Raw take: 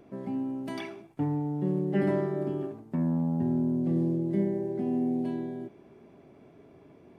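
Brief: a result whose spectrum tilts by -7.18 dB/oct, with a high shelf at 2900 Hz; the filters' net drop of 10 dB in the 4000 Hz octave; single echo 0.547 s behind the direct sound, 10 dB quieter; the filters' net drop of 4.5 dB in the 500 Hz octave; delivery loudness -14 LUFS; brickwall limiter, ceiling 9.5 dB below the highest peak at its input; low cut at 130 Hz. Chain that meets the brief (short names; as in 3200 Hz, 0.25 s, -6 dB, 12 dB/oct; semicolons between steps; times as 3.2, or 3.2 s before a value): HPF 130 Hz; bell 500 Hz -6.5 dB; high shelf 2900 Hz -8.5 dB; bell 4000 Hz -7 dB; limiter -27 dBFS; echo 0.547 s -10 dB; gain +21 dB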